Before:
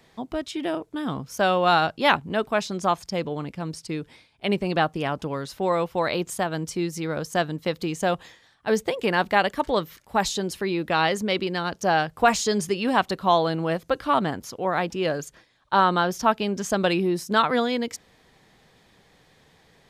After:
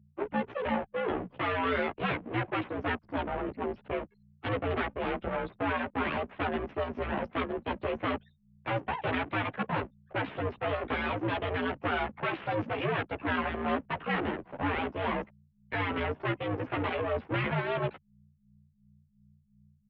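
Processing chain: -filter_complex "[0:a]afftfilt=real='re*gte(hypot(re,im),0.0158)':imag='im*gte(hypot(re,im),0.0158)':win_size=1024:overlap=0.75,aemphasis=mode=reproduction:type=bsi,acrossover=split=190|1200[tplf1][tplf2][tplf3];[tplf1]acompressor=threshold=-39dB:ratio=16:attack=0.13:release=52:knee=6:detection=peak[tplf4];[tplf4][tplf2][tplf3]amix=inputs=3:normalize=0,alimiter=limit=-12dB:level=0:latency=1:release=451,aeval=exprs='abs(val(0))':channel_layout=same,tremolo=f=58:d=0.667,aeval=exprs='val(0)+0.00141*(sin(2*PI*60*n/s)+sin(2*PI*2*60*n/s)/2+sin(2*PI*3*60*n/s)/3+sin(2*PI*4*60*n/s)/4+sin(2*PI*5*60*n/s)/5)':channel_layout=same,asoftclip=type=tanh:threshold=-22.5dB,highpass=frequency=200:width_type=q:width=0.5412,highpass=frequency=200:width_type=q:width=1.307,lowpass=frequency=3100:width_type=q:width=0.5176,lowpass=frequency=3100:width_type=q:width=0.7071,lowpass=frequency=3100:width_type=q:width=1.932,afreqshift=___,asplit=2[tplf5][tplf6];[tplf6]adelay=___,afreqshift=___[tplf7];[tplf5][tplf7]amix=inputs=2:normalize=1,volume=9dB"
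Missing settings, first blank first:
-96, 11.4, 2.8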